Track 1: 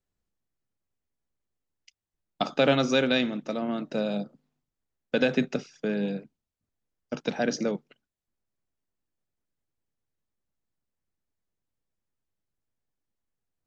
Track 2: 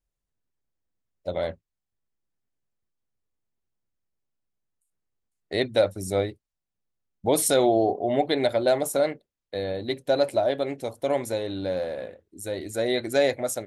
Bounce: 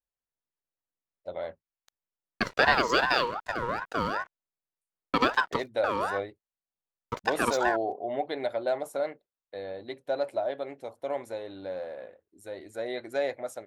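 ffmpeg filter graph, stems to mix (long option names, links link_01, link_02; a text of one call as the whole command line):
ffmpeg -i stem1.wav -i stem2.wav -filter_complex "[0:a]aeval=exprs='sgn(val(0))*max(abs(val(0))-0.00562,0)':channel_layout=same,aeval=exprs='val(0)*sin(2*PI*1000*n/s+1000*0.3/2.6*sin(2*PI*2.6*n/s))':channel_layout=same,volume=2.5dB[link_01];[1:a]equalizer=frequency=1000:width=0.33:gain=13,volume=-18dB[link_02];[link_01][link_02]amix=inputs=2:normalize=0" out.wav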